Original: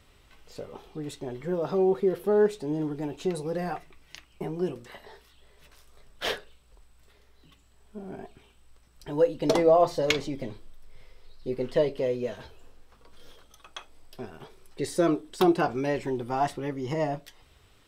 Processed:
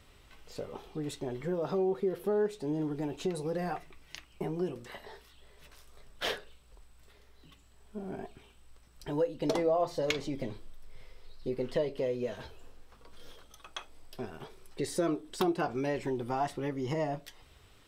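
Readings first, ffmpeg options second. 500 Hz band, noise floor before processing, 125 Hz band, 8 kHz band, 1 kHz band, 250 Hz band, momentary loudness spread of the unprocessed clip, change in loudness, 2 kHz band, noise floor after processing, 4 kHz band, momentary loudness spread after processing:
-6.5 dB, -60 dBFS, -3.5 dB, -3.5 dB, -6.0 dB, -5.0 dB, 20 LU, -6.5 dB, -5.0 dB, -60 dBFS, -4.5 dB, 17 LU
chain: -af "acompressor=threshold=0.0251:ratio=2"

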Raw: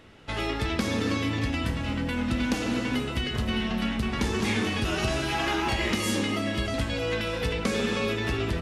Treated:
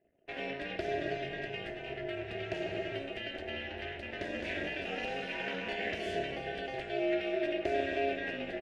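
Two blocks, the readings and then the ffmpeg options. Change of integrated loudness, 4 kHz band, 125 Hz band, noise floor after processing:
-8.5 dB, -11.0 dB, -18.0 dB, -44 dBFS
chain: -filter_complex "[0:a]anlmdn=0.0251,asplit=3[s0][s1][s2];[s0]bandpass=f=530:t=q:w=8,volume=1[s3];[s1]bandpass=f=1840:t=q:w=8,volume=0.501[s4];[s2]bandpass=f=2480:t=q:w=8,volume=0.355[s5];[s3][s4][s5]amix=inputs=3:normalize=0,asplit=2[s6][s7];[s7]adelay=758,volume=0.0316,highshelf=f=4000:g=-17.1[s8];[s6][s8]amix=inputs=2:normalize=0,aeval=exprs='val(0)*sin(2*PI*140*n/s)':c=same,volume=2.24"

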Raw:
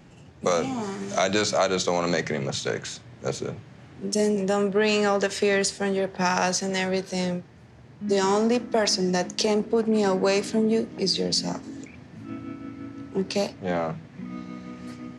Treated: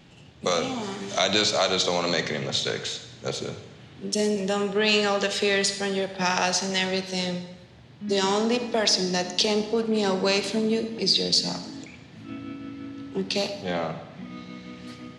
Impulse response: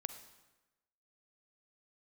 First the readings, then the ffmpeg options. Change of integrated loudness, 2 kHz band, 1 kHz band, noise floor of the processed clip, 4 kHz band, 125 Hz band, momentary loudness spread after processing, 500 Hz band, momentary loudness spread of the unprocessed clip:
+0.5 dB, +1.5 dB, -1.0 dB, -48 dBFS, +5.5 dB, -2.0 dB, 18 LU, -2.0 dB, 16 LU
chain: -filter_complex "[0:a]equalizer=f=3500:w=1.4:g=11[s0];[1:a]atrim=start_sample=2205[s1];[s0][s1]afir=irnorm=-1:irlink=0"

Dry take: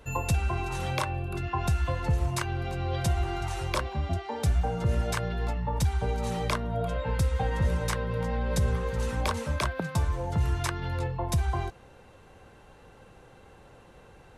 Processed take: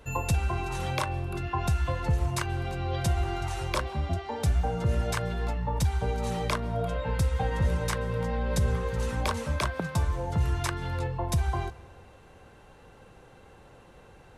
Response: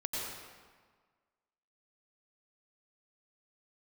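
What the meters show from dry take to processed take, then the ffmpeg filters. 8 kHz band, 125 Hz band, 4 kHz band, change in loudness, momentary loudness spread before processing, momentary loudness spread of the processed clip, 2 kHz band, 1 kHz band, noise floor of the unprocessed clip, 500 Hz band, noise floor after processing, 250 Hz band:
0.0 dB, 0.0 dB, 0.0 dB, 0.0 dB, 4 LU, 4 LU, 0.0 dB, 0.0 dB, -54 dBFS, 0.0 dB, -54 dBFS, 0.0 dB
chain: -filter_complex "[0:a]asplit=2[s0][s1];[1:a]atrim=start_sample=2205,adelay=41[s2];[s1][s2]afir=irnorm=-1:irlink=0,volume=0.075[s3];[s0][s3]amix=inputs=2:normalize=0"

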